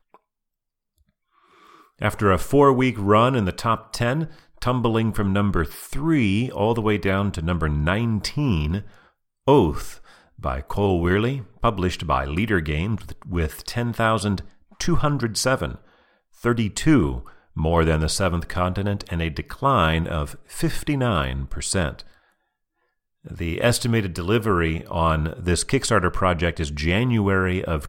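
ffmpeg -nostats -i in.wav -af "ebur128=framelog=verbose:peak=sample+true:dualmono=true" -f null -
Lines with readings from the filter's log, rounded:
Integrated loudness:
  I:         -19.3 LUFS
  Threshold: -29.9 LUFS
Loudness range:
  LRA:         3.7 LU
  Threshold: -40.0 LUFS
  LRA low:   -21.5 LUFS
  LRA high:  -17.9 LUFS
Sample peak:
  Peak:       -4.1 dBFS
True peak:
  Peak:       -4.1 dBFS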